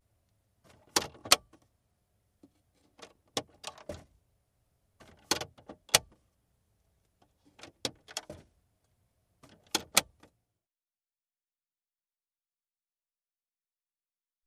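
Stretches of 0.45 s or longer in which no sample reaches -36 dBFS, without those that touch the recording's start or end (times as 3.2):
1.36–3.03
3.95–5.31
5.99–7.63
8.3–9.75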